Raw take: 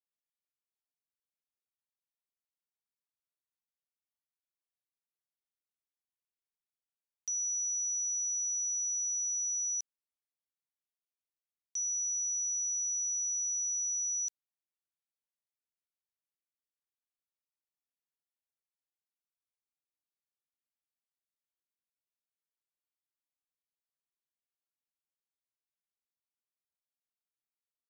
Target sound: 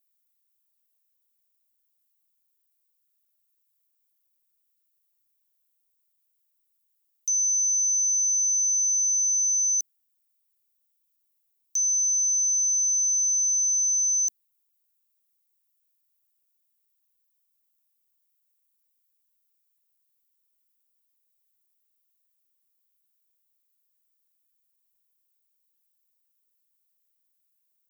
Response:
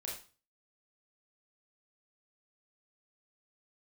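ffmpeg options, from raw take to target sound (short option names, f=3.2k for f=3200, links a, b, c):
-af "afreqshift=210,aemphasis=mode=production:type=riaa"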